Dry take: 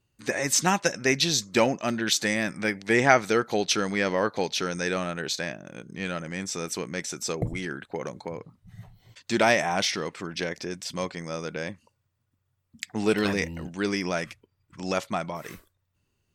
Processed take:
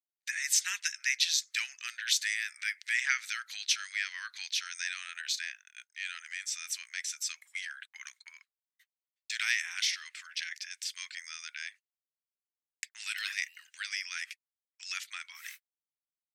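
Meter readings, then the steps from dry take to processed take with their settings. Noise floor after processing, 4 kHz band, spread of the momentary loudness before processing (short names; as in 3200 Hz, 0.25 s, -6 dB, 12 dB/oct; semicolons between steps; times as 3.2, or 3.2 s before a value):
under -85 dBFS, -3.0 dB, 14 LU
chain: gate -40 dBFS, range -47 dB; steep high-pass 1700 Hz 36 dB/oct; in parallel at 0 dB: compressor, threshold -40 dBFS, peak gain reduction 19.5 dB; on the sum: gain -4.5 dB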